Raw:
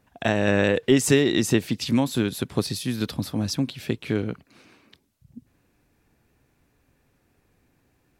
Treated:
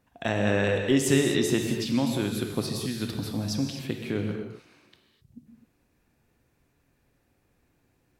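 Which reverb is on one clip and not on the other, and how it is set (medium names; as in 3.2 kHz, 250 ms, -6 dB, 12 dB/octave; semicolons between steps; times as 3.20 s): gated-style reverb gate 280 ms flat, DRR 3 dB; trim -5 dB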